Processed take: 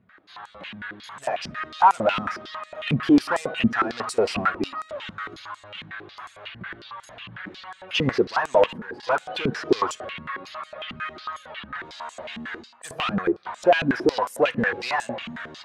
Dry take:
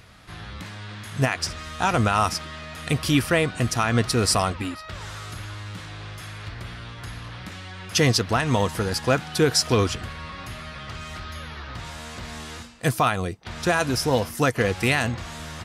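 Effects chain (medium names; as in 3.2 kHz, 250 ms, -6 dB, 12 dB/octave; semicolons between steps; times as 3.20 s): expander on every frequency bin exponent 1.5; overdrive pedal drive 29 dB, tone 1 kHz, clips at -8.5 dBFS; in parallel at -10 dB: one-sided clip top -31.5 dBFS; 8.66–9.07 s: on the sum: level held to a coarse grid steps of 16 dB; on a send at -16 dB: reverberation RT60 1.1 s, pre-delay 3 ms; on the sum: step-sequenced band-pass 11 Hz 210–7900 Hz; trim +7.5 dB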